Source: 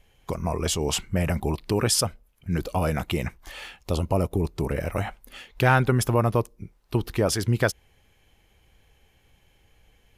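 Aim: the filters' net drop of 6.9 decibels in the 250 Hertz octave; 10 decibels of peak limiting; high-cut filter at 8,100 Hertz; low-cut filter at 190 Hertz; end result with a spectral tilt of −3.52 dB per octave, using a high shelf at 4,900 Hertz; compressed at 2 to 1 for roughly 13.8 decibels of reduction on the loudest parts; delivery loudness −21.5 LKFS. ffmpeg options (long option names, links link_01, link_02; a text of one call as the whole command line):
ffmpeg -i in.wav -af "highpass=190,lowpass=8100,equalizer=frequency=250:width_type=o:gain=-7.5,highshelf=frequency=4900:gain=5.5,acompressor=threshold=-43dB:ratio=2,volume=20dB,alimiter=limit=-8dB:level=0:latency=1" out.wav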